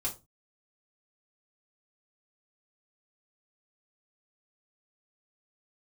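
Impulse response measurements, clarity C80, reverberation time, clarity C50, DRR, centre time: 21.5 dB, non-exponential decay, 13.5 dB, −5.0 dB, 15 ms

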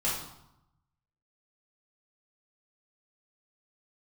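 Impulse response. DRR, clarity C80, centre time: −8.0 dB, 6.0 dB, 50 ms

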